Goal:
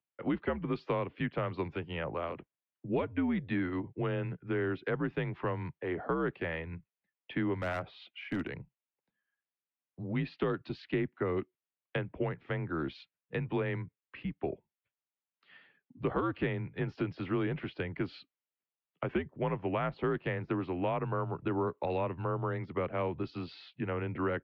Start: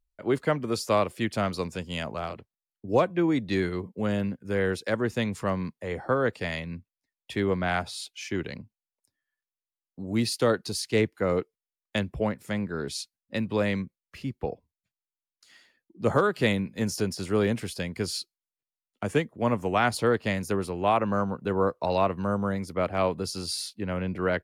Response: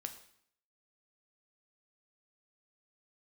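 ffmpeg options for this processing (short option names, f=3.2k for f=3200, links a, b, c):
-filter_complex "[0:a]highpass=f=200:t=q:w=0.5412,highpass=f=200:t=q:w=1.307,lowpass=f=3.2k:t=q:w=0.5176,lowpass=f=3.2k:t=q:w=0.7071,lowpass=f=3.2k:t=q:w=1.932,afreqshift=-80,acrossover=split=220|2000[a][b][c];[a]acompressor=threshold=-37dB:ratio=4[d];[b]acompressor=threshold=-32dB:ratio=4[e];[c]acompressor=threshold=-49dB:ratio=4[f];[d][e][f]amix=inputs=3:normalize=0,asettb=1/sr,asplit=3[g][h][i];[g]atrim=end=7.604[j];[h]atrim=start=7.6:end=8.5,asetpts=PTS-STARTPTS,afade=t=in:d=0.004:c=qsin,afade=t=out:st=0.896:d=0.004:c=qsin,aeval=exprs='clip(val(0),-1,0.0282)':c=same[k];[i]atrim=start=8.496[l];[j][k]acrossfade=d=0.004:c1=hsin:c2=qsin[m];[m][l]acrossfade=d=0.004:c1=qsin:c2=hsin"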